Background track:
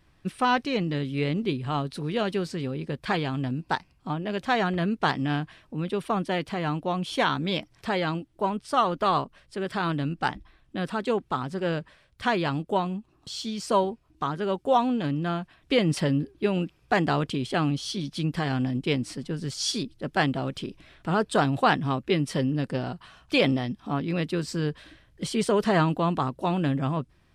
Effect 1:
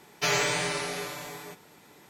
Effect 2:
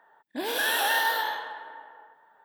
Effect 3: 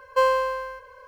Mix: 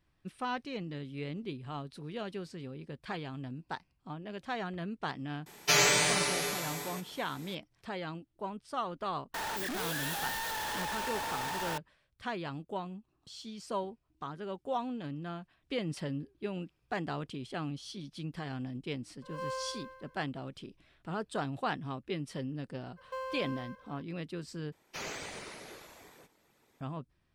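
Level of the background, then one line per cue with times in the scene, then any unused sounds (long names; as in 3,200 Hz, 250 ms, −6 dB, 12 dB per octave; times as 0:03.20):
background track −12.5 dB
0:05.46: mix in 1 −1 dB + high-shelf EQ 3,900 Hz +7 dB
0:09.34: mix in 2 −6 dB + sign of each sample alone
0:19.22: mix in 3 −16 dB + spectrum smeared in time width 196 ms
0:22.96: mix in 3 −11.5 dB, fades 0.02 s + downward compressor 2.5 to 1, threshold −28 dBFS
0:24.72: overwrite with 1 −15 dB + random phases in short frames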